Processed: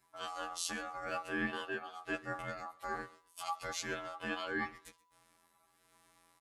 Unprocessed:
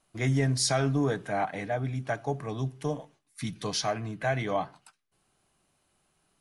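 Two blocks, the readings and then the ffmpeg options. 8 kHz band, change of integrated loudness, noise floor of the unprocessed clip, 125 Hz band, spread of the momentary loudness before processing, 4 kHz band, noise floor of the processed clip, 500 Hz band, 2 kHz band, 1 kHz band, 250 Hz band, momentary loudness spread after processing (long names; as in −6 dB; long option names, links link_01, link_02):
−9.5 dB, −10.0 dB, −73 dBFS, −25.0 dB, 11 LU, −9.0 dB, −73 dBFS, −13.0 dB, −2.5 dB, −7.0 dB, −12.0 dB, 7 LU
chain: -af "areverse,acompressor=threshold=-37dB:ratio=5,areverse,afftfilt=real='hypot(re,im)*cos(PI*b)':imag='0':win_size=2048:overlap=0.75,aecho=1:1:5.5:0.81,aeval=exprs='val(0)*sin(2*PI*990*n/s)':channel_layout=same,aecho=1:1:129|258:0.0794|0.0167,volume=6dB"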